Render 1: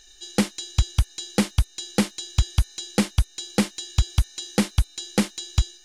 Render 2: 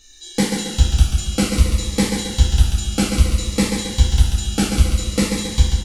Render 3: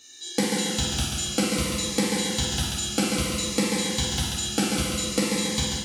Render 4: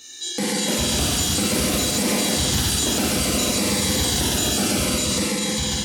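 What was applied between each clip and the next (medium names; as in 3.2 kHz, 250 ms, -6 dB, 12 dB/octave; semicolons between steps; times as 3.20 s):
feedback delay 137 ms, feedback 48%, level -5.5 dB; two-slope reverb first 0.52 s, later 4.1 s, from -18 dB, DRR -6 dB; Shepard-style phaser falling 0.58 Hz; trim -1 dB
high-pass 180 Hz 12 dB/octave; compression, threshold -20 dBFS, peak gain reduction 6.5 dB; on a send: flutter echo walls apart 8.1 m, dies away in 0.46 s
treble shelf 11 kHz +4.5 dB; peak limiter -21 dBFS, peak gain reduction 11 dB; ever faster or slower copies 359 ms, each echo +3 st, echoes 2; trim +7 dB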